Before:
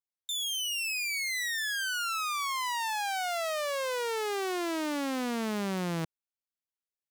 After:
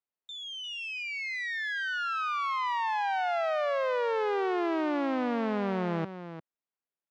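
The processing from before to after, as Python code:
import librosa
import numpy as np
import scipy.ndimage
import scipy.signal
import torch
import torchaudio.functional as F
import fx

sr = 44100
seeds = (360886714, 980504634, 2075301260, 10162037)

p1 = fx.highpass(x, sr, hz=360.0, slope=6)
p2 = fx.spacing_loss(p1, sr, db_at_10k=43)
p3 = p2 + fx.echo_single(p2, sr, ms=350, db=-11.0, dry=0)
y = p3 * 10.0 ** (8.0 / 20.0)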